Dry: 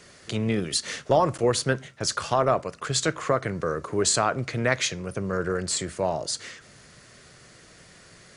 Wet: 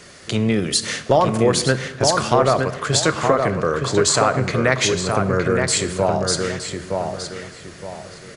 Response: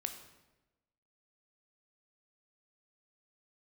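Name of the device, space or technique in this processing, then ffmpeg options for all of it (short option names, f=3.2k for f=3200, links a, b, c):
compressed reverb return: -filter_complex "[0:a]asplit=2[a][b];[1:a]atrim=start_sample=2205[c];[b][c]afir=irnorm=-1:irlink=0,acompressor=threshold=-24dB:ratio=6,volume=1.5dB[d];[a][d]amix=inputs=2:normalize=0,asettb=1/sr,asplit=3[e][f][g];[e]atrim=end=3.514[h];[f]atrim=start=3.51:end=4.44,asetpts=PTS-STARTPTS,afade=t=in:d=0.004:c=qsin,afade=t=out:st=0.926:d=0.004:c=qsin,lowpass=9.3k[i];[g]atrim=start=4.436[j];[h][i]acrossfade=d=0.004:c1=hsin:c2=qsin[k];[k][j]acrossfade=d=0.004:c1=qsin:c2=hsin,asplit=2[l][m];[m]adelay=917,lowpass=f=3.1k:p=1,volume=-4dB,asplit=2[n][o];[o]adelay=917,lowpass=f=3.1k:p=1,volume=0.33,asplit=2[p][q];[q]adelay=917,lowpass=f=3.1k:p=1,volume=0.33,asplit=2[r][s];[s]adelay=917,lowpass=f=3.1k:p=1,volume=0.33[t];[l][n][p][r][t]amix=inputs=5:normalize=0,volume=1.5dB"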